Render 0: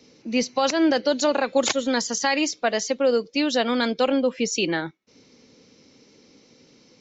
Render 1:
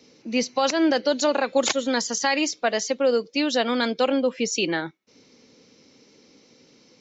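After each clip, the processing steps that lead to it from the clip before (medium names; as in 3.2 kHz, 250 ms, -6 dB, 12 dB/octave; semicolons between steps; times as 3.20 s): bass shelf 130 Hz -6 dB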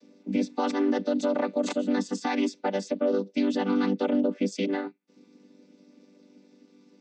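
vocoder on a held chord major triad, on G3; peak limiter -16.5 dBFS, peak gain reduction 7.5 dB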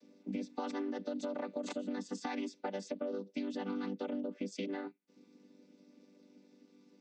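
compression, threshold -29 dBFS, peak gain reduction 8.5 dB; trim -6 dB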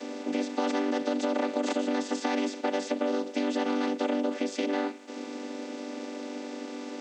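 spectral levelling over time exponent 0.4; brick-wall FIR high-pass 220 Hz; trim +6.5 dB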